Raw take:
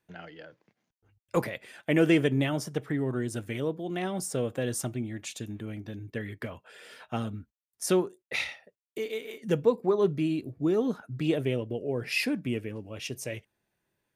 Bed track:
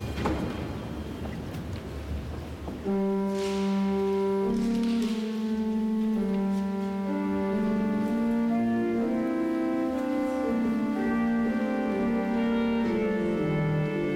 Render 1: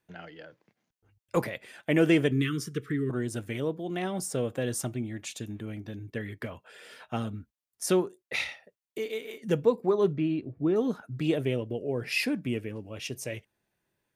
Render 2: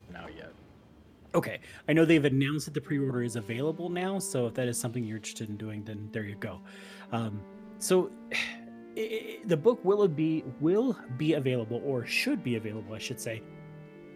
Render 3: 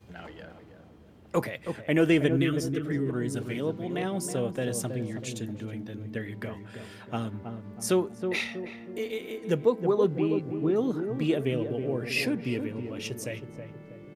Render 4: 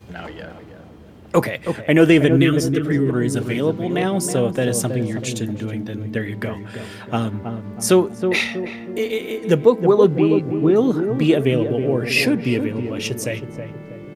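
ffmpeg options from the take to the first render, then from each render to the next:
-filter_complex "[0:a]asettb=1/sr,asplit=3[s0][s1][s2];[s0]atrim=end=2.314[s3];[s1]atrim=start=2.31:end=3.1,asetpts=PTS-STARTPTS,afade=t=in:d=0.004:c=qsin,afade=t=out:st=0.786:d=0.004:c=qsin,asuperstop=centerf=720:order=12:qfactor=1.1[s4];[s2]atrim=start=3.096[s5];[s3][s4]acrossfade=d=0.004:c1=hsin:c2=qsin[s6];[s6][s5]acrossfade=d=0.004:c1=qsin:c2=hsin,asettb=1/sr,asplit=3[s7][s8][s9];[s7]atrim=end=10.134[s10];[s8]atrim=start=10.13:end=10.76,asetpts=PTS-STARTPTS,afade=t=in:d=0.004:c=qsin,afade=t=out:st=0.626:d=0.004:c=qsin,lowpass=2800[s11];[s9]atrim=start=10.756[s12];[s10][s11]acrossfade=d=0.004:c1=hsin:c2=qsin[s13];[s13][s12]acrossfade=d=0.004:c1=qsin:c2=hsin"
-filter_complex "[1:a]volume=0.0891[s0];[0:a][s0]amix=inputs=2:normalize=0"
-filter_complex "[0:a]asplit=2[s0][s1];[s1]adelay=321,lowpass=f=840:p=1,volume=0.501,asplit=2[s2][s3];[s3]adelay=321,lowpass=f=840:p=1,volume=0.5,asplit=2[s4][s5];[s5]adelay=321,lowpass=f=840:p=1,volume=0.5,asplit=2[s6][s7];[s7]adelay=321,lowpass=f=840:p=1,volume=0.5,asplit=2[s8][s9];[s9]adelay=321,lowpass=f=840:p=1,volume=0.5,asplit=2[s10][s11];[s11]adelay=321,lowpass=f=840:p=1,volume=0.5[s12];[s0][s2][s4][s6][s8][s10][s12]amix=inputs=7:normalize=0"
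-af "volume=3.35,alimiter=limit=0.794:level=0:latency=1"

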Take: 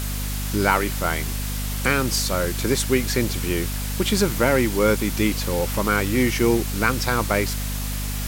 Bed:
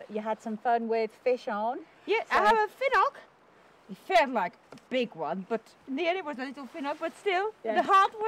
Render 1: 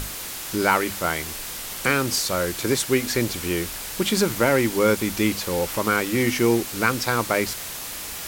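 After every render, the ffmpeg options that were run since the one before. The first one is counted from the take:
-af "bandreject=f=50:t=h:w=6,bandreject=f=100:t=h:w=6,bandreject=f=150:t=h:w=6,bandreject=f=200:t=h:w=6,bandreject=f=250:t=h:w=6"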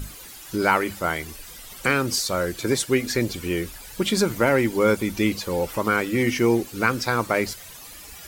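-af "afftdn=nr=13:nf=-34"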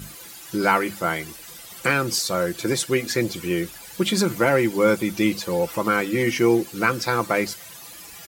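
-af "highpass=88,aecho=1:1:5.9:0.43"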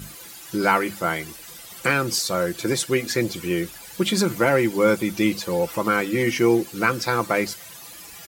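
-af anull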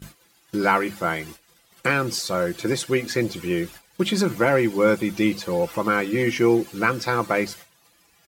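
-af "agate=range=0.178:threshold=0.0126:ratio=16:detection=peak,highshelf=f=5600:g=-7.5"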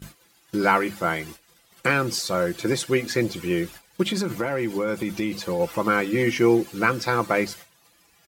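-filter_complex "[0:a]asplit=3[s0][s1][s2];[s0]afade=t=out:st=4.02:d=0.02[s3];[s1]acompressor=threshold=0.0891:ratio=6:attack=3.2:release=140:knee=1:detection=peak,afade=t=in:st=4.02:d=0.02,afade=t=out:st=5.59:d=0.02[s4];[s2]afade=t=in:st=5.59:d=0.02[s5];[s3][s4][s5]amix=inputs=3:normalize=0"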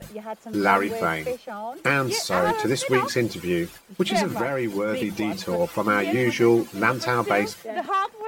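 -filter_complex "[1:a]volume=0.75[s0];[0:a][s0]amix=inputs=2:normalize=0"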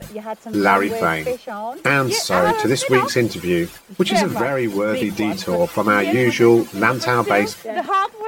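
-af "volume=1.88,alimiter=limit=0.794:level=0:latency=1"

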